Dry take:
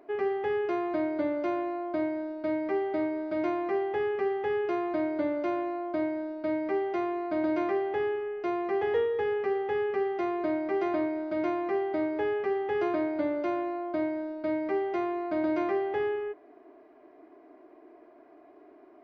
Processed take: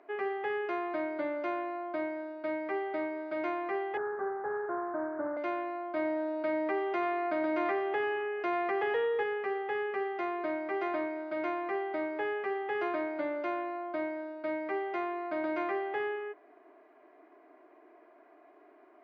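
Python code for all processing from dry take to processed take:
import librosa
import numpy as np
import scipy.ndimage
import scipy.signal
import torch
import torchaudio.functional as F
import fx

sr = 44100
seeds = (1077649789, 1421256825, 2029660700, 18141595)

y = fx.chain(x, sr, fx.delta_mod(bps=16000, step_db=-36.5),
    fx.cheby1_lowpass(hz=1600.0, order=5), at=(3.97, 5.37))
y = fx.chain(y, sr, fx.highpass(hz=48.0, slope=12),
    fx.echo_single(ms=90, db=-12.0),
    fx.env_flatten(amount_pct=50), at=(5.96, 9.23))
y = scipy.signal.sosfilt(scipy.signal.butter(2, 2000.0, 'lowpass', fs=sr, output='sos'), y)
y = fx.tilt_eq(y, sr, slope=4.5)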